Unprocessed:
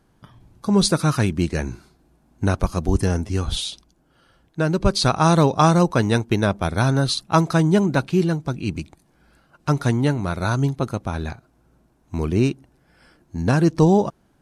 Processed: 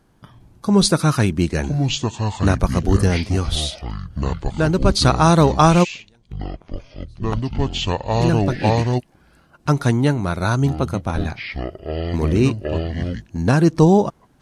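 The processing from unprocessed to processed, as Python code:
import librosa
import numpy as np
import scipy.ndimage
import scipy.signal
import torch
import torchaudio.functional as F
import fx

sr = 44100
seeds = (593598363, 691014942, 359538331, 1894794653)

y = fx.gate_flip(x, sr, shuts_db=-16.0, range_db=-41, at=(5.83, 8.2), fade=0.02)
y = fx.echo_pitch(y, sr, ms=731, semitones=-6, count=2, db_per_echo=-6.0)
y = F.gain(torch.from_numpy(y), 2.5).numpy()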